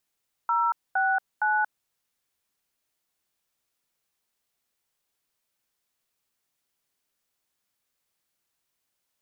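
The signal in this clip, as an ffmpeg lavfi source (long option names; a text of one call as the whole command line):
ffmpeg -f lavfi -i "aevalsrc='0.0668*clip(min(mod(t,0.463),0.231-mod(t,0.463))/0.002,0,1)*(eq(floor(t/0.463),0)*(sin(2*PI*941*mod(t,0.463))+sin(2*PI*1336*mod(t,0.463)))+eq(floor(t/0.463),1)*(sin(2*PI*770*mod(t,0.463))+sin(2*PI*1477*mod(t,0.463)))+eq(floor(t/0.463),2)*(sin(2*PI*852*mod(t,0.463))+sin(2*PI*1477*mod(t,0.463))))':duration=1.389:sample_rate=44100" out.wav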